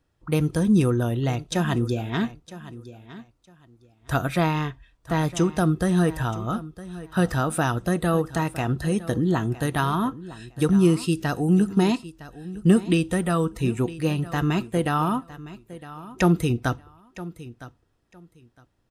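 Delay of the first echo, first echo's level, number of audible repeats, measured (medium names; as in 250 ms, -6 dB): 960 ms, -16.5 dB, 2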